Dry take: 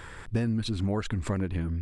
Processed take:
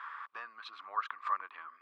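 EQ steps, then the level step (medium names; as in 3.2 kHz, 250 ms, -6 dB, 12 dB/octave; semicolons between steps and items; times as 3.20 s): ladder high-pass 1.1 kHz, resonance 85%; distance through air 280 m; +8.5 dB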